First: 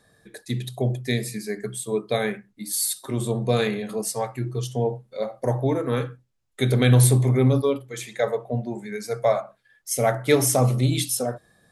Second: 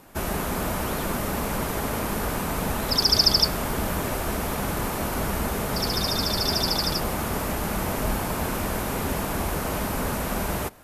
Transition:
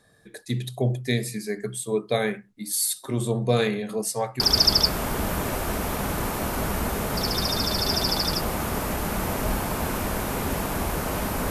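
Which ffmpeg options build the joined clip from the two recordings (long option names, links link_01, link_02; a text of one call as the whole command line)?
ffmpeg -i cue0.wav -i cue1.wav -filter_complex "[0:a]apad=whole_dur=11.5,atrim=end=11.5,atrim=end=4.402[link_01];[1:a]atrim=start=2.988:end=10.09[link_02];[link_01][link_02]acrossfade=duration=0.004:curve1=hsin:curve2=hsin" out.wav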